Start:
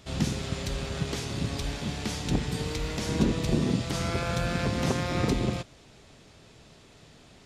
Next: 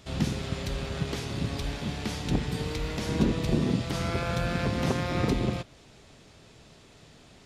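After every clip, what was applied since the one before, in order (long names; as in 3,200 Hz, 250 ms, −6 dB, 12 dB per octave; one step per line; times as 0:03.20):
dynamic equaliser 7,300 Hz, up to −5 dB, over −54 dBFS, Q 0.99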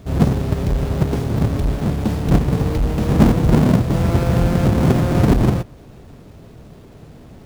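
each half-wave held at its own peak
tilt shelving filter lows +6 dB
level +3 dB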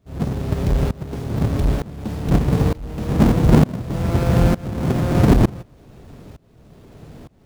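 shaped tremolo saw up 1.1 Hz, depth 95%
level +2.5 dB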